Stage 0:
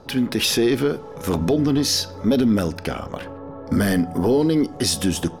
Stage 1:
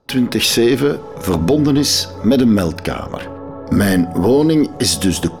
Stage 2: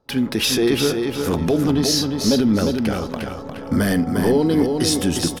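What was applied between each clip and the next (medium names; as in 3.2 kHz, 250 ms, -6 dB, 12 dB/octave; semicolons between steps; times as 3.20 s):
gate with hold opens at -29 dBFS; trim +5.5 dB
feedback delay 354 ms, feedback 30%, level -5 dB; trim -5 dB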